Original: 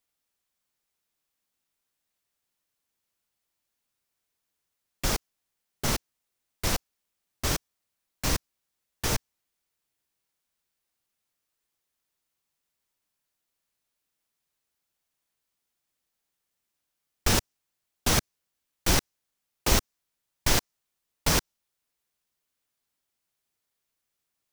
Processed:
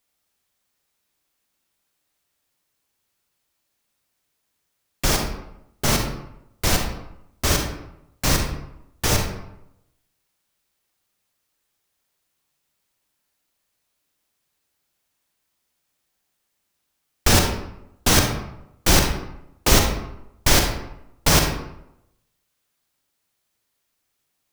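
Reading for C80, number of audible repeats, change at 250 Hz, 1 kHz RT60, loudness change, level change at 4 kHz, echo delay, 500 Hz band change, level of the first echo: 7.5 dB, none, +8.5 dB, 0.85 s, +7.0 dB, +8.0 dB, none, +8.5 dB, none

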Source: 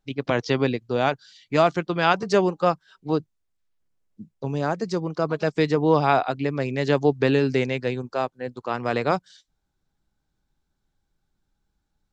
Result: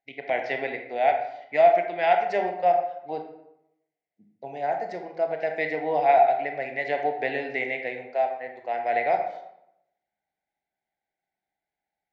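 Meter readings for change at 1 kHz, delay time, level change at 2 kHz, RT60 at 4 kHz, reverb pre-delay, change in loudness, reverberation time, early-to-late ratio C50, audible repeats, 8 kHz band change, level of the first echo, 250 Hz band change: +2.5 dB, none, -0.5 dB, 0.50 s, 24 ms, -1.5 dB, 0.80 s, 6.0 dB, none, n/a, none, -14.5 dB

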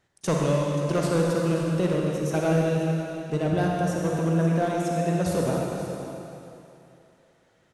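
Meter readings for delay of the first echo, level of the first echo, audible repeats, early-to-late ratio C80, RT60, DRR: 0.531 s, -13.5 dB, 1, -0.5 dB, 2.9 s, -2.5 dB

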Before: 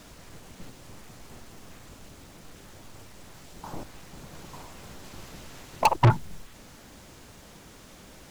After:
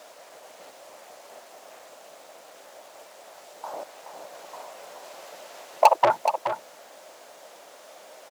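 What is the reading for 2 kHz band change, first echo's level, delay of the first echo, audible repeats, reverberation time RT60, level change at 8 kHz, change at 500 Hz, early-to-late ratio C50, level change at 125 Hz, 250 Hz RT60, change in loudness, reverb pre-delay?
+1.5 dB, -8.5 dB, 0.424 s, 1, none, +0.5 dB, +9.0 dB, none, under -25 dB, none, +1.5 dB, none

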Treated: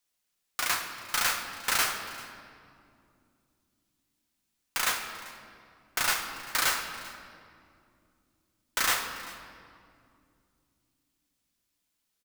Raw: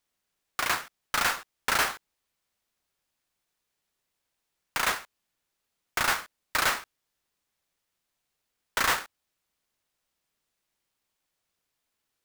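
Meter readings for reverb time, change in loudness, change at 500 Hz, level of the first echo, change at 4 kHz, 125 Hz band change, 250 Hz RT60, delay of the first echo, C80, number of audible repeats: 2.5 s, -1.0 dB, -4.5 dB, -19.5 dB, +1.0 dB, -4.0 dB, 4.2 s, 0.391 s, 7.5 dB, 1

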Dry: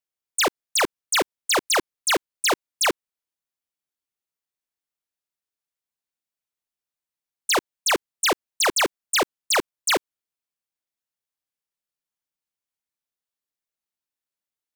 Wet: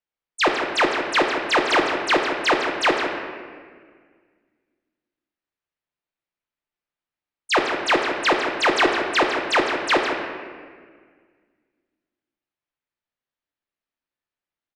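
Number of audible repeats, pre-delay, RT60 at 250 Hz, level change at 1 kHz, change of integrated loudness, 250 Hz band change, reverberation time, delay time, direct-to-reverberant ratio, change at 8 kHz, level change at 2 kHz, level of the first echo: 1, 3 ms, 2.3 s, +5.0 dB, +2.0 dB, +6.5 dB, 1.7 s, 0.159 s, 1.0 dB, -11.5 dB, +5.0 dB, -9.0 dB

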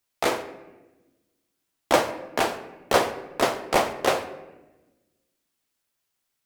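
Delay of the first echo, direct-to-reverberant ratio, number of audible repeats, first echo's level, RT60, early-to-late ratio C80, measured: none, 7.0 dB, none, none, 1.1 s, 13.5 dB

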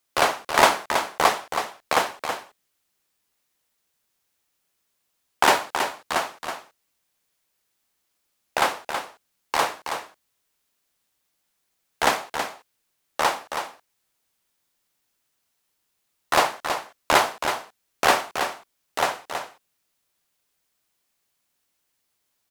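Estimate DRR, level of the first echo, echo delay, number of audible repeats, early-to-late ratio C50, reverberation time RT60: none, -7.5 dB, 0.324 s, 1, none, none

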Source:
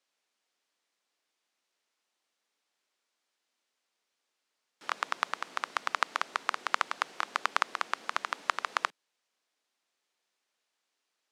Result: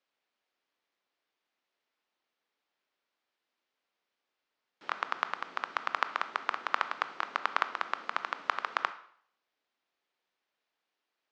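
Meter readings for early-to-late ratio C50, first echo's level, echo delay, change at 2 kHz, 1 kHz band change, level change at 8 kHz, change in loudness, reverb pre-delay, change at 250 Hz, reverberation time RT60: 14.0 dB, none, none, -1.0 dB, -0.5 dB, under -10 dB, -1.0 dB, 18 ms, 0.0 dB, 0.60 s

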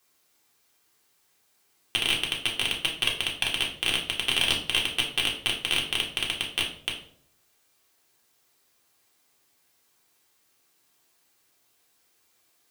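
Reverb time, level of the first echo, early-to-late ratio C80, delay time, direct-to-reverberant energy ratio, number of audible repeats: 0.60 s, none, 12.0 dB, none, -2.5 dB, none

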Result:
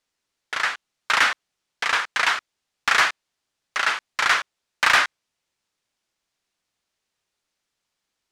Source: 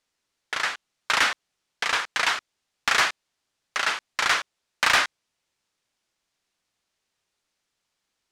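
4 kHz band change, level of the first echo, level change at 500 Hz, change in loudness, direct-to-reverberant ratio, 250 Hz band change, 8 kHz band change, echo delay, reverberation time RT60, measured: +0.5 dB, none, +0.5 dB, +2.5 dB, none, -0.5 dB, -0.5 dB, none, none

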